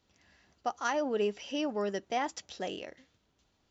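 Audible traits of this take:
background noise floor −74 dBFS
spectral slope −3.5 dB per octave

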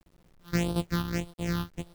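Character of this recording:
a buzz of ramps at a fixed pitch in blocks of 256 samples
phaser sweep stages 6, 1.7 Hz, lowest notch 570–2,000 Hz
a quantiser's noise floor 10 bits, dither none

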